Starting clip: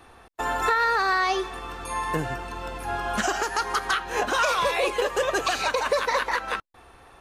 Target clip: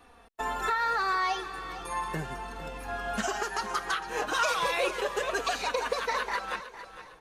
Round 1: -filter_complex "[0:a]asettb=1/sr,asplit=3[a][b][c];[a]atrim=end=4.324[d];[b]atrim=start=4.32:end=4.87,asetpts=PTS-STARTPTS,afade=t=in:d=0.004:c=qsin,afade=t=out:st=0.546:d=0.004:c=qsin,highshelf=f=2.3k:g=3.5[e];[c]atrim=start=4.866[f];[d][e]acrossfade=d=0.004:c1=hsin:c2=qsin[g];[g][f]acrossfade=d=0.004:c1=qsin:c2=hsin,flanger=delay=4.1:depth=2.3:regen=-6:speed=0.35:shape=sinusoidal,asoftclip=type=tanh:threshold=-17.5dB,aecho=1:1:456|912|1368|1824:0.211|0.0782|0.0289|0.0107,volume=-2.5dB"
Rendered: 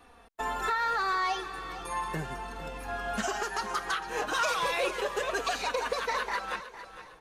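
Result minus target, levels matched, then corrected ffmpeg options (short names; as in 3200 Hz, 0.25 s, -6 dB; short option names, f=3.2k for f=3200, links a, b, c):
soft clip: distortion +18 dB
-filter_complex "[0:a]asettb=1/sr,asplit=3[a][b][c];[a]atrim=end=4.324[d];[b]atrim=start=4.32:end=4.87,asetpts=PTS-STARTPTS,afade=t=in:d=0.004:c=qsin,afade=t=out:st=0.546:d=0.004:c=qsin,highshelf=f=2.3k:g=3.5[e];[c]atrim=start=4.866[f];[d][e]acrossfade=d=0.004:c1=hsin:c2=qsin[g];[g][f]acrossfade=d=0.004:c1=qsin:c2=hsin,flanger=delay=4.1:depth=2.3:regen=-6:speed=0.35:shape=sinusoidal,asoftclip=type=tanh:threshold=-7.5dB,aecho=1:1:456|912|1368|1824:0.211|0.0782|0.0289|0.0107,volume=-2.5dB"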